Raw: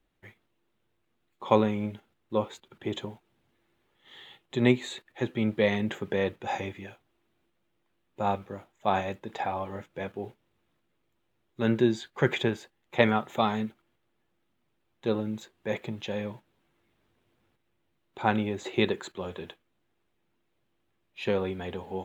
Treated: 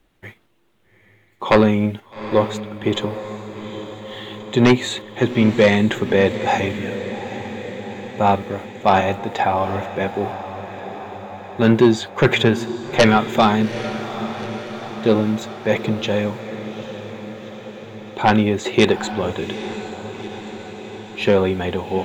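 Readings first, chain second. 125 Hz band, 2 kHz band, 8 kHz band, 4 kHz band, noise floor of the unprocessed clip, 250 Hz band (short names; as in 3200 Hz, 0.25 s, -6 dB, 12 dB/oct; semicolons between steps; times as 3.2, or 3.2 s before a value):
+11.5 dB, +11.5 dB, n/a, +12.5 dB, -75 dBFS, +12.0 dB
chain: sine folder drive 9 dB, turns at -5.5 dBFS; diffused feedback echo 0.822 s, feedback 66%, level -12 dB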